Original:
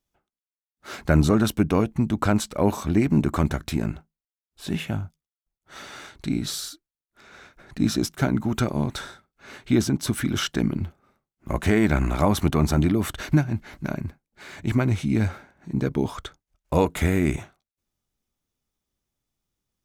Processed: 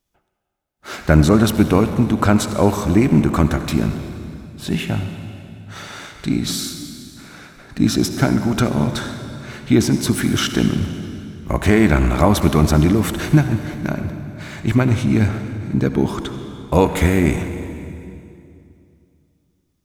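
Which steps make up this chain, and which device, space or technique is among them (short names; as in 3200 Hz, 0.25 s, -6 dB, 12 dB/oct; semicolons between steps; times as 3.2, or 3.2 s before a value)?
saturated reverb return (on a send at -6 dB: reverb RT60 2.5 s, pre-delay 58 ms + soft clip -20 dBFS, distortion -12 dB); on the sum: gain +6 dB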